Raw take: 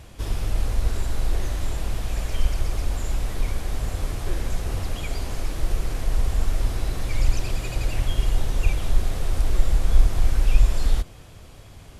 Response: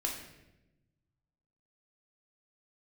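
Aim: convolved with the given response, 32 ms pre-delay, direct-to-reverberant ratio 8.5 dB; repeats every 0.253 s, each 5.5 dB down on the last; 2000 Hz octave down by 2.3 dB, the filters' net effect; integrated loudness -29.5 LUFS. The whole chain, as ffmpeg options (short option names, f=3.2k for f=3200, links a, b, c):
-filter_complex "[0:a]equalizer=f=2k:t=o:g=-3,aecho=1:1:253|506|759|1012|1265|1518|1771:0.531|0.281|0.149|0.079|0.0419|0.0222|0.0118,asplit=2[a][b];[1:a]atrim=start_sample=2205,adelay=32[c];[b][c]afir=irnorm=-1:irlink=0,volume=-11.5dB[d];[a][d]amix=inputs=2:normalize=0,volume=-4dB"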